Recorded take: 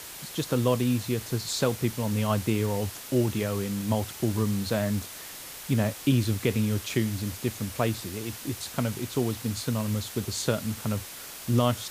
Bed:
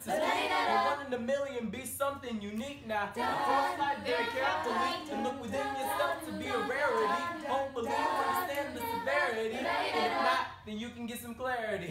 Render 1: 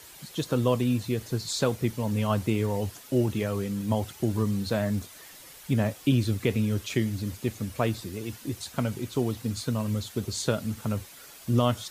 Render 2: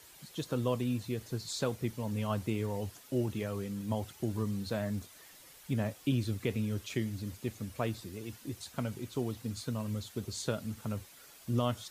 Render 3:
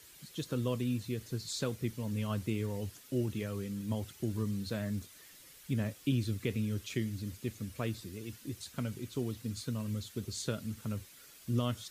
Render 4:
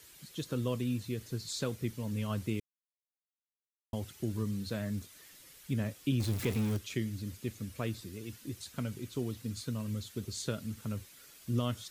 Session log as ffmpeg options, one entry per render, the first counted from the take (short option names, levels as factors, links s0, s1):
-af "afftdn=nr=9:nf=-42"
-af "volume=0.422"
-af "equalizer=f=790:w=1.3:g=-8.5"
-filter_complex "[0:a]asettb=1/sr,asplit=3[s0][s1][s2];[s0]atrim=end=6.204[s3];[s1]atrim=start=6.2:end=6.77,asetpts=PTS-STARTPTS,afade=t=in:d=0.004:c=qsin,afade=t=out:st=0.566:d=0.004:c=qsin,aeval=exprs='val(0)+0.5*0.0168*sgn(val(0))':c=same[s4];[s2]atrim=start=6.766[s5];[s3][s4]acrossfade=d=0.004:c1=hsin:c2=qsin[s6];[s6][s5]acrossfade=d=0.004:c1=qsin:c2=hsin,asplit=3[s7][s8][s9];[s7]atrim=end=2.6,asetpts=PTS-STARTPTS,afade=t=out:st=2.596:d=0.004:c=hsin[s10];[s8]atrim=start=2.6:end=3.93,asetpts=PTS-STARTPTS,volume=0[s11];[s9]atrim=start=3.93,asetpts=PTS-STARTPTS,afade=t=in:d=0.004:c=hsin[s12];[s10][s11][s12]concat=n=3:v=0:a=1"